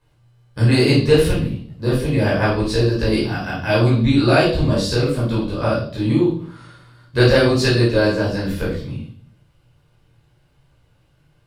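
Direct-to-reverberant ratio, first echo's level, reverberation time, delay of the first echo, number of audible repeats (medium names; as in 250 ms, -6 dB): -8.0 dB, no echo, 0.55 s, no echo, no echo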